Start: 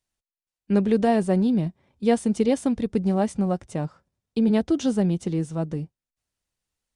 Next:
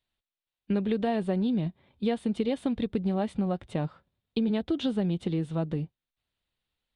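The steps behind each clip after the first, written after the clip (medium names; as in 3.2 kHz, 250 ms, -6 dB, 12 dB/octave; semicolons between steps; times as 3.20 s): resonant high shelf 4.7 kHz -8.5 dB, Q 3; compression 4:1, threshold -25 dBFS, peak gain reduction 9.5 dB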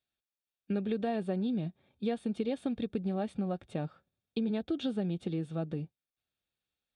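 comb of notches 1 kHz; trim -4.5 dB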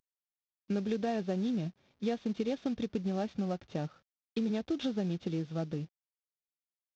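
CVSD coder 32 kbps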